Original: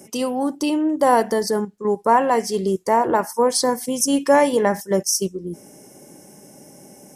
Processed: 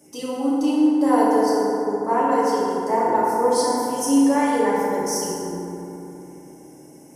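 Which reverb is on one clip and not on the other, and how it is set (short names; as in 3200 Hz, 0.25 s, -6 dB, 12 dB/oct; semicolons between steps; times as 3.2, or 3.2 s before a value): FDN reverb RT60 3.2 s, low-frequency decay 1.2×, high-frequency decay 0.4×, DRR -8.5 dB; gain -12 dB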